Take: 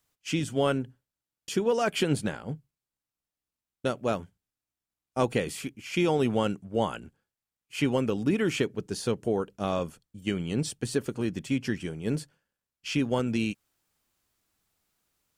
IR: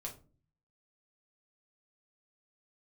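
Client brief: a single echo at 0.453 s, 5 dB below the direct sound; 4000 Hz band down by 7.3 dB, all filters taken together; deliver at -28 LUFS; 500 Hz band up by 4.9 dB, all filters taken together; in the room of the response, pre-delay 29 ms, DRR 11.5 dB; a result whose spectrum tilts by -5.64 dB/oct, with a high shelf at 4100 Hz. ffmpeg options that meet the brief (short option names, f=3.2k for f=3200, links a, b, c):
-filter_complex "[0:a]equalizer=f=500:t=o:g=6,equalizer=f=4k:t=o:g=-8,highshelf=f=4.1k:g=-5,aecho=1:1:453:0.562,asplit=2[a][b];[1:a]atrim=start_sample=2205,adelay=29[c];[b][c]afir=irnorm=-1:irlink=0,volume=-9.5dB[d];[a][d]amix=inputs=2:normalize=0,volume=-2dB"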